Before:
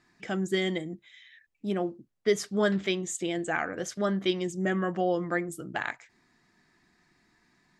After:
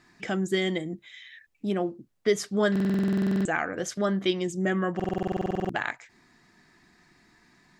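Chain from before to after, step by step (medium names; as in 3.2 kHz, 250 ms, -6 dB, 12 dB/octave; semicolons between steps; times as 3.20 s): in parallel at +1 dB: compression, threshold -40 dBFS, peak gain reduction 19.5 dB; on the sum: buffer glitch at 2.71/4.95 s, samples 2048, times 15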